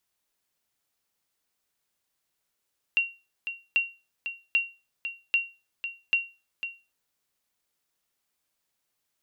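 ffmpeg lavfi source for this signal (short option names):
-f lavfi -i "aevalsrc='0.168*(sin(2*PI*2750*mod(t,0.79))*exp(-6.91*mod(t,0.79)/0.29)+0.316*sin(2*PI*2750*max(mod(t,0.79)-0.5,0))*exp(-6.91*max(mod(t,0.79)-0.5,0)/0.29))':d=3.95:s=44100"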